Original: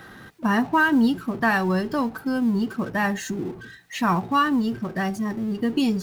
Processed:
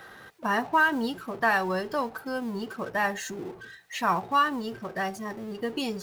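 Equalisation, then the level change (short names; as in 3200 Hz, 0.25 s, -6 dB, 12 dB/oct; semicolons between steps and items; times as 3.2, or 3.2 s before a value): resonant low shelf 360 Hz -7.5 dB, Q 1.5; -2.5 dB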